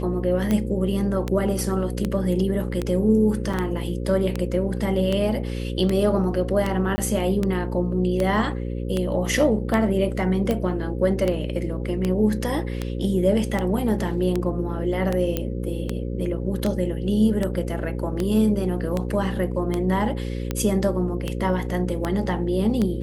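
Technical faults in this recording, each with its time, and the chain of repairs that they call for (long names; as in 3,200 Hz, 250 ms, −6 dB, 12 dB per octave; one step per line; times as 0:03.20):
mains buzz 60 Hz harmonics 9 −28 dBFS
scratch tick 78 rpm −11 dBFS
0:03.53: drop-out 4.7 ms
0:06.96–0:06.98: drop-out 20 ms
0:15.37: click −10 dBFS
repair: click removal
hum removal 60 Hz, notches 9
repair the gap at 0:03.53, 4.7 ms
repair the gap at 0:06.96, 20 ms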